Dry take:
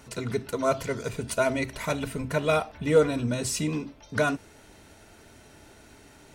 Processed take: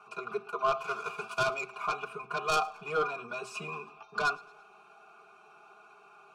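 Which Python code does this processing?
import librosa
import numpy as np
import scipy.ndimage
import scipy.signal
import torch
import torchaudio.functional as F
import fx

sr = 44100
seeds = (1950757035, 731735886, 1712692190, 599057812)

y = fx.envelope_flatten(x, sr, power=0.6, at=(0.79, 1.49), fade=0.02)
y = fx.vowel_filter(y, sr, vowel='a')
y = fx.band_shelf(y, sr, hz=1700.0, db=13.5, octaves=1.3)
y = y + 0.79 * np.pad(y, (int(4.9 * sr / 1000.0), 0))[:len(y)]
y = 10.0 ** (-25.0 / 20.0) * np.tanh(y / 10.0 ** (-25.0 / 20.0))
y = fx.fixed_phaser(y, sr, hz=390.0, stages=8)
y = fx.echo_feedback(y, sr, ms=111, feedback_pct=48, wet_db=-23.5)
y = fx.band_squash(y, sr, depth_pct=100, at=(3.55, 4.03))
y = y * 10.0 ** (8.0 / 20.0)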